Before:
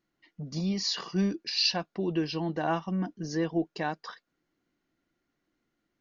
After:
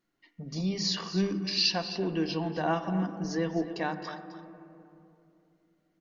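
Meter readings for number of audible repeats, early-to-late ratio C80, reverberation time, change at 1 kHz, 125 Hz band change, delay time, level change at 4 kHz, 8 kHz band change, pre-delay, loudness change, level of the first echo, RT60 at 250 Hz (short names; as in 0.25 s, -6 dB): 1, 9.5 dB, 2.9 s, +0.5 dB, 0.0 dB, 0.261 s, +0.5 dB, n/a, 4 ms, 0.0 dB, -13.0 dB, 3.4 s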